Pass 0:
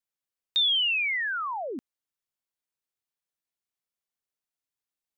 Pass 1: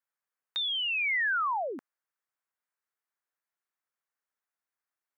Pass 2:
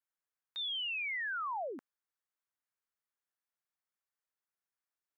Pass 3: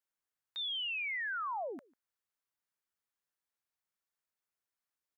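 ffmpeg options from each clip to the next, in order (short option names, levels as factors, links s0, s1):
-af "highpass=f=1100:p=1,highshelf=f=2300:t=q:w=1.5:g=-11,acompressor=threshold=0.0224:ratio=6,volume=2.11"
-af "alimiter=level_in=1.68:limit=0.0631:level=0:latency=1,volume=0.596,volume=0.531"
-filter_complex "[0:a]asplit=2[s0][s1];[s1]adelay=145.8,volume=0.0501,highshelf=f=4000:g=-3.28[s2];[s0][s2]amix=inputs=2:normalize=0"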